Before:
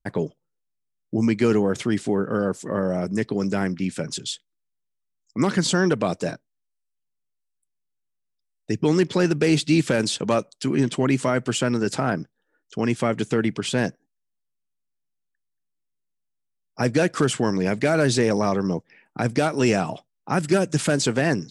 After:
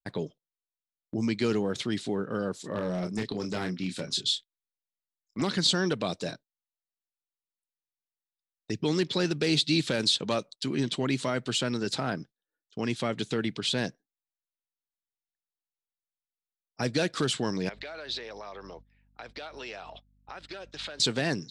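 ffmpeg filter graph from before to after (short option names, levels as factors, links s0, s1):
-filter_complex "[0:a]asettb=1/sr,asplit=3[s0][s1][s2];[s0]atrim=end=2.614[s3];[s1]atrim=start=2.61:end=5.42,asetpts=PTS-STARTPTS,afade=t=in:d=0.004:c=qsin,afade=t=out:st=2.806:d=0.004:c=qsin,asplit=2[s4][s5];[s5]adelay=28,volume=0.501[s6];[s4][s6]amix=inputs=2:normalize=0,atrim=end_sample=123921,asoftclip=type=hard:threshold=0.15[s7];[s2]atrim=start=5.416[s8];[s3][s7]acrossfade=d=0.004:c1=hsin:c2=qsin[s9];[s9][s8]acrossfade=d=0.004:c1=qsin:c2=hsin,asettb=1/sr,asplit=3[s10][s11][s12];[s10]atrim=end=17.694[s13];[s11]atrim=start=17.69:end=21,asetpts=PTS-STARTPTS,afade=t=in:d=0.004:c=qsin,afade=t=out:st=3.306:d=0.004:c=qsin,acrossover=split=450 4600:gain=0.0794 1 0.0708[s14][s15][s16];[s14][s15][s16]amix=inputs=3:normalize=0,aeval=exprs='val(0)+0.00708*(sin(2*PI*50*n/s)+sin(2*PI*2*50*n/s)/2+sin(2*PI*3*50*n/s)/3+sin(2*PI*4*50*n/s)/4+sin(2*PI*5*50*n/s)/5)':c=same,acompressor=threshold=0.0282:ratio=5:attack=3.2:release=140:knee=1:detection=peak[s17];[s12]atrim=start=20.996[s18];[s13][s17]acrossfade=d=0.004:c1=hsin:c2=qsin[s19];[s19][s18]acrossfade=d=0.004:c1=qsin:c2=hsin,agate=range=0.2:threshold=0.0112:ratio=16:detection=peak,equalizer=f=3900:t=o:w=0.7:g=14.5,volume=0.398"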